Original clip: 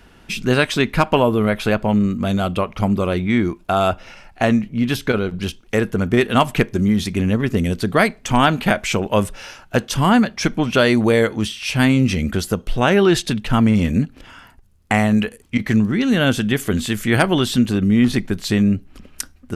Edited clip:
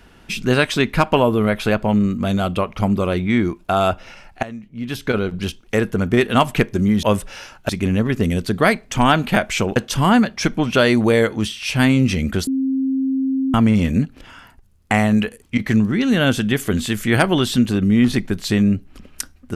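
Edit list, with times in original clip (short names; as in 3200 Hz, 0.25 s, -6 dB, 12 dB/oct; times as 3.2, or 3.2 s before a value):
4.43–5.17 fade in quadratic, from -18 dB
9.1–9.76 move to 7.03
12.47–13.54 bleep 266 Hz -16.5 dBFS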